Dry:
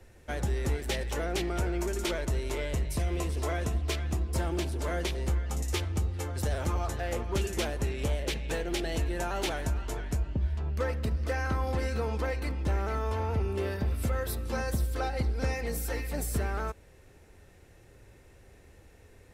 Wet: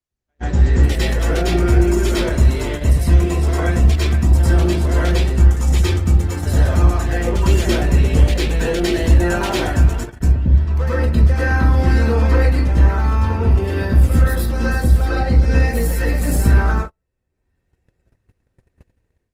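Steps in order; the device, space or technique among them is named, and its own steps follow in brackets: speakerphone in a meeting room (reverb RT60 0.45 s, pre-delay 98 ms, DRR -8 dB; AGC gain up to 16.5 dB; gate -20 dBFS, range -39 dB; gain -1.5 dB; Opus 20 kbps 48000 Hz)

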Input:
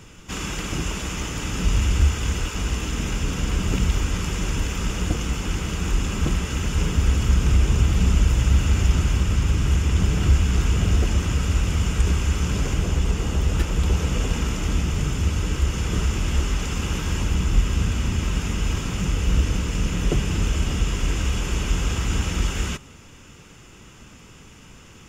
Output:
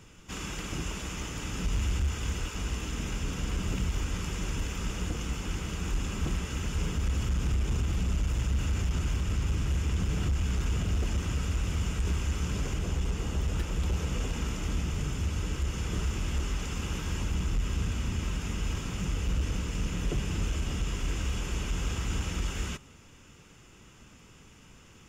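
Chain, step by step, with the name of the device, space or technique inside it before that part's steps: limiter into clipper (limiter -11.5 dBFS, peak gain reduction 4.5 dB; hard clip -15 dBFS, distortion -21 dB); gain -8 dB

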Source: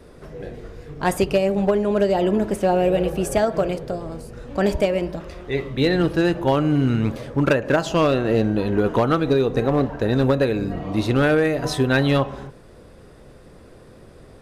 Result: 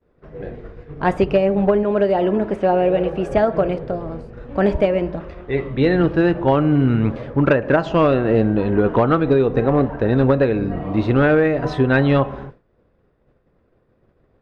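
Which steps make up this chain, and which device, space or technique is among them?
hearing-loss simulation (LPF 2300 Hz 12 dB/oct; expander -33 dBFS); 1.83–3.31 low shelf 180 Hz -7 dB; gain +3 dB

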